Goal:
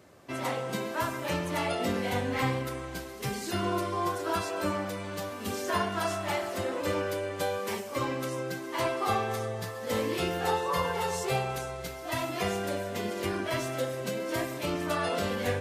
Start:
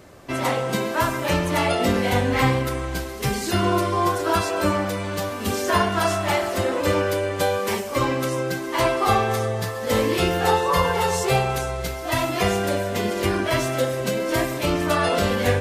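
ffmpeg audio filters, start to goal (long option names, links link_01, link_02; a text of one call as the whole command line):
ffmpeg -i in.wav -af "highpass=92,volume=-9dB" out.wav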